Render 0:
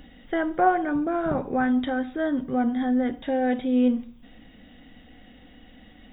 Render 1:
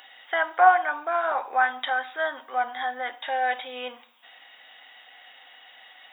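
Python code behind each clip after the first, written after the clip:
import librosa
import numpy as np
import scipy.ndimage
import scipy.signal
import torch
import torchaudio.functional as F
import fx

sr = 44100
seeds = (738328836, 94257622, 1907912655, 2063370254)

y = scipy.signal.sosfilt(scipy.signal.cheby1(3, 1.0, 840.0, 'highpass', fs=sr, output='sos'), x)
y = y * librosa.db_to_amplitude(8.5)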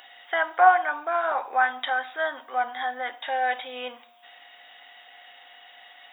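y = x + 10.0 ** (-56.0 / 20.0) * np.sin(2.0 * np.pi * 710.0 * np.arange(len(x)) / sr)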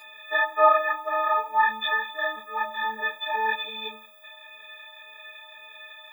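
y = fx.freq_snap(x, sr, grid_st=6)
y = fx.ensemble(y, sr)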